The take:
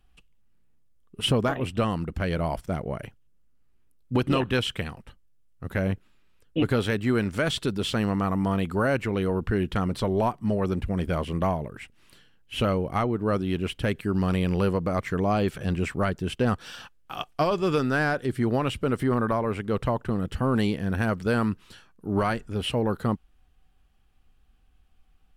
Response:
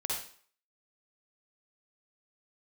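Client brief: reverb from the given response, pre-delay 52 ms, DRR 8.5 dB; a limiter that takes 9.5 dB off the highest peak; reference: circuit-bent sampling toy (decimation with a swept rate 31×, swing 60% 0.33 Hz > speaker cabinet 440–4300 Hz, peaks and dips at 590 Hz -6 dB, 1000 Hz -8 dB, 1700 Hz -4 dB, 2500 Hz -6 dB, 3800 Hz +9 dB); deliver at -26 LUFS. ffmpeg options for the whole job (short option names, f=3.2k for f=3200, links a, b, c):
-filter_complex "[0:a]alimiter=limit=-23dB:level=0:latency=1,asplit=2[a][b];[1:a]atrim=start_sample=2205,adelay=52[c];[b][c]afir=irnorm=-1:irlink=0,volume=-12.5dB[d];[a][d]amix=inputs=2:normalize=0,acrusher=samples=31:mix=1:aa=0.000001:lfo=1:lforange=18.6:lforate=0.33,highpass=440,equalizer=f=590:t=q:w=4:g=-6,equalizer=f=1k:t=q:w=4:g=-8,equalizer=f=1.7k:t=q:w=4:g=-4,equalizer=f=2.5k:t=q:w=4:g=-6,equalizer=f=3.8k:t=q:w=4:g=9,lowpass=f=4.3k:w=0.5412,lowpass=f=4.3k:w=1.3066,volume=12.5dB"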